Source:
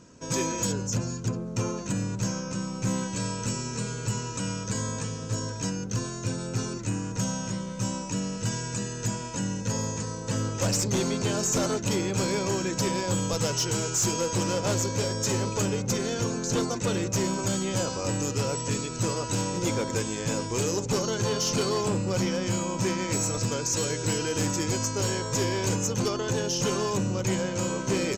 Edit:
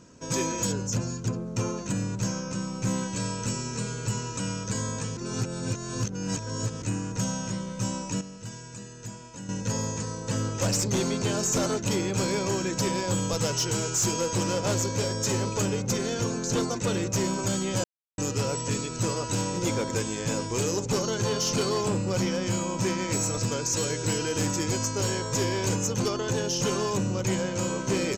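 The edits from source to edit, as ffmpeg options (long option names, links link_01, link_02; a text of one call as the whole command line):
ffmpeg -i in.wav -filter_complex "[0:a]asplit=7[link_01][link_02][link_03][link_04][link_05][link_06][link_07];[link_01]atrim=end=5.172[link_08];[link_02]atrim=start=5.168:end=6.822,asetpts=PTS-STARTPTS,areverse[link_09];[link_03]atrim=start=6.818:end=8.212[link_10];[link_04]atrim=start=8.208:end=9.492,asetpts=PTS-STARTPTS,volume=-10dB[link_11];[link_05]atrim=start=9.488:end=17.84,asetpts=PTS-STARTPTS,afade=type=out:start_time=8.348:duration=0.004:curve=hsin[link_12];[link_06]atrim=start=17.84:end=18.18,asetpts=PTS-STARTPTS,volume=0[link_13];[link_07]atrim=start=18.18,asetpts=PTS-STARTPTS,afade=type=in:duration=0.004:curve=hsin[link_14];[link_08][link_09]acrossfade=duration=0.004:curve1=hsin:curve2=hsin[link_15];[link_15][link_10]acrossfade=duration=0.004:curve1=hsin:curve2=hsin[link_16];[link_16][link_11]acrossfade=duration=0.004:curve1=hsin:curve2=hsin[link_17];[link_12][link_13][link_14]concat=n=3:v=0:a=1[link_18];[link_17][link_18]acrossfade=duration=0.004:curve1=hsin:curve2=hsin" out.wav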